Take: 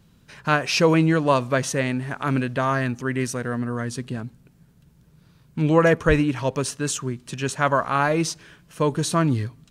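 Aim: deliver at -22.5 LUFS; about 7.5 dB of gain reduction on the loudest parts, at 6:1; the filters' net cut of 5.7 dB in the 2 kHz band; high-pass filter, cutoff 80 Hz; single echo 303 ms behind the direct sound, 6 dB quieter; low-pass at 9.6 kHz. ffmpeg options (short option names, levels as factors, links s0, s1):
-af "highpass=80,lowpass=9600,equalizer=f=2000:t=o:g=-8,acompressor=threshold=0.0891:ratio=6,aecho=1:1:303:0.501,volume=1.68"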